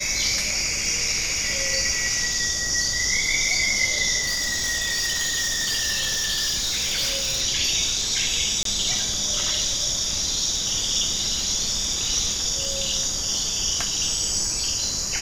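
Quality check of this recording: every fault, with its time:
crackle 30/s -27 dBFS
4.23–7.42 clipped -20.5 dBFS
8.63–8.65 gap 23 ms

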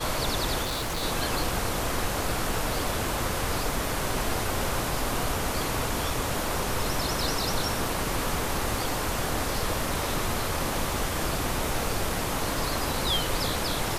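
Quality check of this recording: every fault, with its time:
0.62–1.04 clipped -26.5 dBFS

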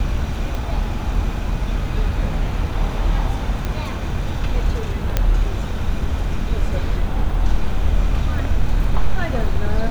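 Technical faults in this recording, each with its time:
0.55 pop
3.65 pop -11 dBFS
5.17 pop -4 dBFS

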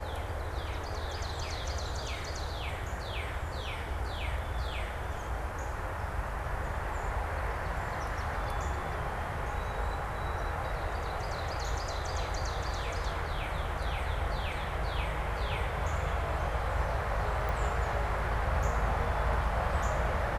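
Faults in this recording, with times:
17.49 pop

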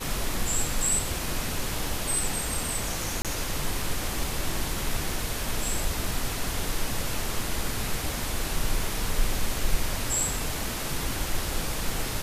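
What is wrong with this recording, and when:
3.22–3.25 gap 27 ms

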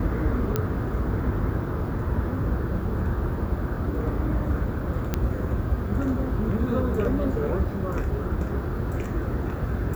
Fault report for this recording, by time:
0.56 pop -10 dBFS
5.14 pop -10 dBFS

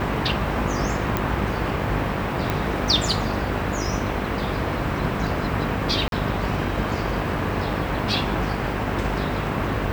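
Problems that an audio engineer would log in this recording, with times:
buzz 50 Hz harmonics 14 -29 dBFS
1.17 pop -8 dBFS
2.5 pop
6.08–6.12 gap 42 ms

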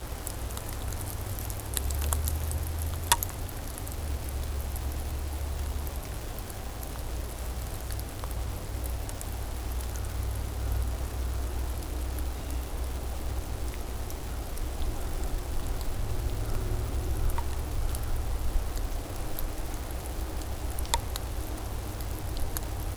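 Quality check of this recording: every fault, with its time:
crackle 480/s -35 dBFS

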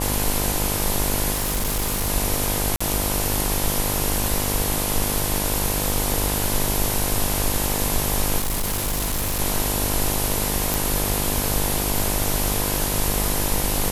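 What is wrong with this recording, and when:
buzz 50 Hz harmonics 21 -27 dBFS
1.32–2.09 clipped -19 dBFS
2.76–2.81 gap 45 ms
8.38–9.41 clipped -20 dBFS
10.74 pop

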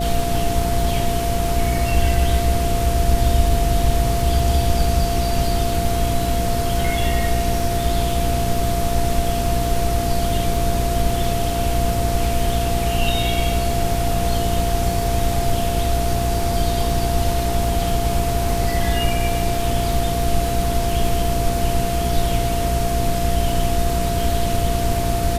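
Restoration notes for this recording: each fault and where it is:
crackle 35/s -26 dBFS
hum 60 Hz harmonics 8 -24 dBFS
tone 690 Hz -23 dBFS

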